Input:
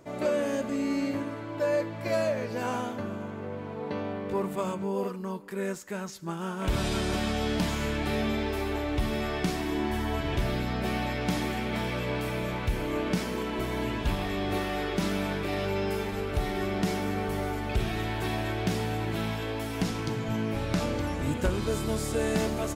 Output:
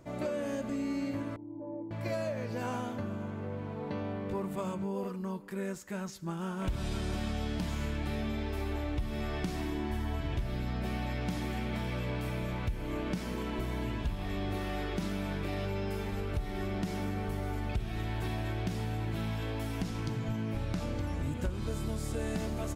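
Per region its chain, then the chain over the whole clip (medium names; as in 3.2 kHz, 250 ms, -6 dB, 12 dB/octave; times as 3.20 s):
1.36–1.91 s: dynamic bell 1.1 kHz, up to +6 dB, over -41 dBFS, Q 0.82 + cascade formant filter u
whole clip: bass shelf 150 Hz +10 dB; band-stop 420 Hz, Q 12; compression 4:1, threshold -27 dBFS; trim -4 dB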